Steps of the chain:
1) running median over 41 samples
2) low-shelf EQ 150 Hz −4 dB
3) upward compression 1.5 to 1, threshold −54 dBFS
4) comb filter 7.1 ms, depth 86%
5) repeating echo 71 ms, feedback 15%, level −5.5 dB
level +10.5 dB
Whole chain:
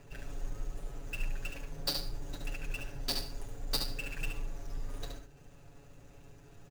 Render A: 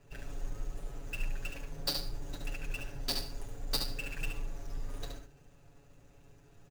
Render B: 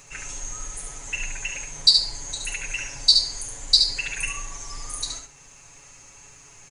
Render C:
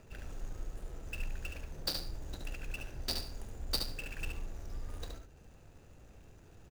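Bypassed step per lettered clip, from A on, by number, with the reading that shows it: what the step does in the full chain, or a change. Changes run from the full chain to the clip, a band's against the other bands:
3, change in momentary loudness spread −11 LU
1, 500 Hz band −13.5 dB
4, 125 Hz band +1.5 dB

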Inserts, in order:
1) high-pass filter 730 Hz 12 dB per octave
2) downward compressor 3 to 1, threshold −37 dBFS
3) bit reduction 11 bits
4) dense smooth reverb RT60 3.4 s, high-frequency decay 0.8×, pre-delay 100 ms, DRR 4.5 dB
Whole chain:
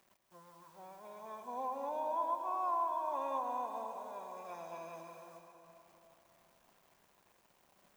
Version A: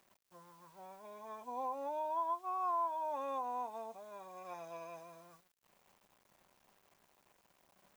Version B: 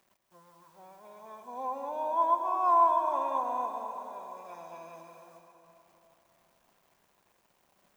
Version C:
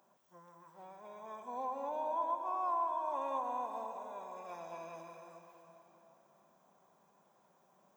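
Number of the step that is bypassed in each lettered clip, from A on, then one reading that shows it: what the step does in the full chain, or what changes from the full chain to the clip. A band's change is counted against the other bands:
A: 4, change in crest factor −2.0 dB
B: 2, change in integrated loudness +10.0 LU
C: 3, distortion level −28 dB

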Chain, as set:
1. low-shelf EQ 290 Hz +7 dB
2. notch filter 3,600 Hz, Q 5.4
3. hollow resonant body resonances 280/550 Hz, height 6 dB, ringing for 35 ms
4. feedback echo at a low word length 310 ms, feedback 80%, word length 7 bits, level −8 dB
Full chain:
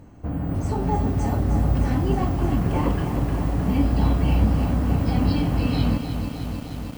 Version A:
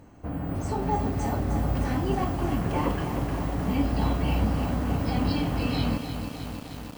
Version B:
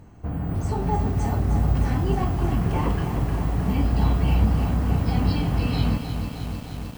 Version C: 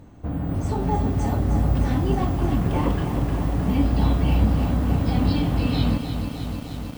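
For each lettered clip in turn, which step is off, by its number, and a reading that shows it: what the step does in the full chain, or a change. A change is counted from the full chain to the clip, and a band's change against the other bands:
1, 125 Hz band −5.5 dB
3, 250 Hz band −2.5 dB
2, 4 kHz band +2.0 dB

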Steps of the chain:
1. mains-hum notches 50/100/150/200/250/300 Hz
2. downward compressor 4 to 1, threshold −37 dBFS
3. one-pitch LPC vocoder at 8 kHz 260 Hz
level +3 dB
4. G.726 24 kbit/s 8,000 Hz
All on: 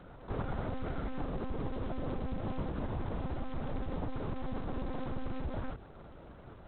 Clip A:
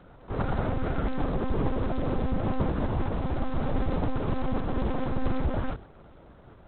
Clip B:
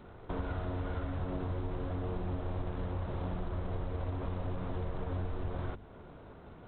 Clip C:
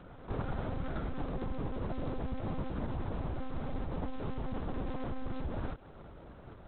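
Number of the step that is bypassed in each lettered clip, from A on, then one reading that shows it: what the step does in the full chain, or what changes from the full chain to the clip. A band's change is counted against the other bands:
2, average gain reduction 7.5 dB
3, 125 Hz band +4.0 dB
1, change in momentary loudness spread −1 LU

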